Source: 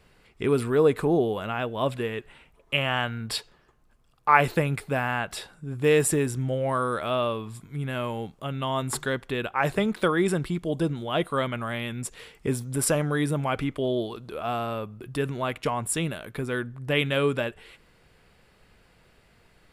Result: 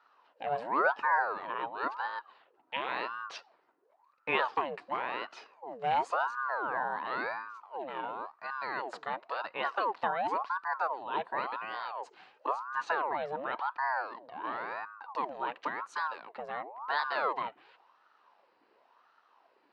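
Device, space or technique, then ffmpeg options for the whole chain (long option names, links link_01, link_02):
voice changer toy: -filter_complex "[0:a]aeval=exprs='val(0)*sin(2*PI*820*n/s+820*0.65/0.94*sin(2*PI*0.94*n/s))':channel_layout=same,highpass=420,equalizer=frequency=970:width_type=q:width=4:gain=6,equalizer=frequency=2200:width_type=q:width=4:gain=-6,equalizer=frequency=3400:width_type=q:width=4:gain=-9,lowpass=frequency=4300:width=0.5412,lowpass=frequency=4300:width=1.3066,asettb=1/sr,asplit=3[link_01][link_02][link_03];[link_01]atrim=end=12.694[link_04];[link_02]atrim=start=12.69:end=14.67,asetpts=PTS-STARTPTS,afade=type=in:duration=0.004:curve=qsin,afade=type=out:start_time=1.976:duration=0.004:curve=qsin,lowpass=5300[link_05];[link_03]atrim=start=14.666[link_06];[link_04][link_05]acrossfade=duration=0.004:curve1=hsin:curve2=qsin[link_07];[link_07][link_06]acrossfade=duration=0.004:curve1=qsin:curve2=hsin,volume=-4.5dB"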